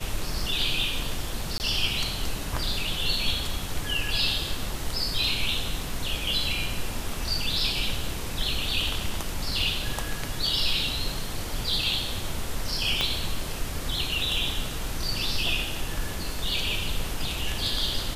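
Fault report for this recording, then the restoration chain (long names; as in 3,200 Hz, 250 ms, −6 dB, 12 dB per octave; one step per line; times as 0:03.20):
0:01.58–0:01.60: drop-out 19 ms
0:13.01: click −10 dBFS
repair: click removal
repair the gap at 0:01.58, 19 ms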